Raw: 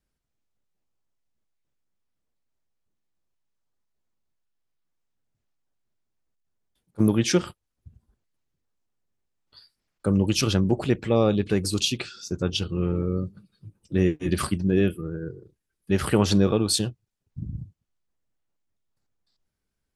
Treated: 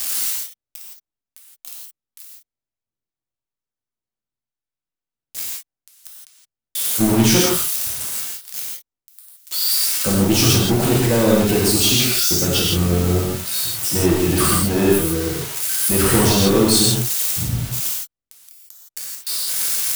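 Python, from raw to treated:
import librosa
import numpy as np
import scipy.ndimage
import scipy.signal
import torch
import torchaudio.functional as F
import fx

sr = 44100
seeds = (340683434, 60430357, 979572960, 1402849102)

y = x + 0.5 * 10.0 ** (-18.5 / 20.0) * np.diff(np.sign(x), prepend=np.sign(x[:1]))
y = fx.leveller(y, sr, passes=3)
y = fx.rev_gated(y, sr, seeds[0], gate_ms=190, shape='flat', drr_db=-5.0)
y = y * 10.0 ** (-7.0 / 20.0)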